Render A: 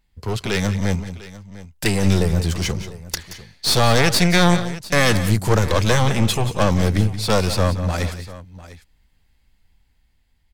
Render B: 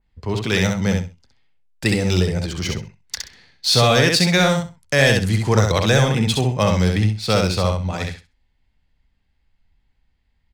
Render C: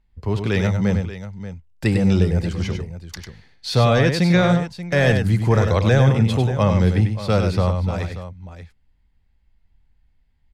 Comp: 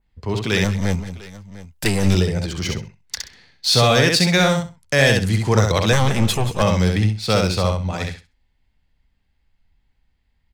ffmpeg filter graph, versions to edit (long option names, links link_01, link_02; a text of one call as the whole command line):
ffmpeg -i take0.wav -i take1.wav -filter_complex "[0:a]asplit=2[link_01][link_02];[1:a]asplit=3[link_03][link_04][link_05];[link_03]atrim=end=0.642[link_06];[link_01]atrim=start=0.638:end=2.152[link_07];[link_04]atrim=start=2.148:end=5.932[link_08];[link_02]atrim=start=5.928:end=6.622[link_09];[link_05]atrim=start=6.618[link_10];[link_06][link_07]acrossfade=duration=0.004:curve1=hsin:curve2=hsin[link_11];[link_11][link_08]acrossfade=duration=0.004:curve1=hsin:curve2=hsin[link_12];[link_12][link_09]acrossfade=duration=0.004:curve1=hsin:curve2=hsin[link_13];[link_13][link_10]acrossfade=duration=0.004:curve1=hsin:curve2=hsin" out.wav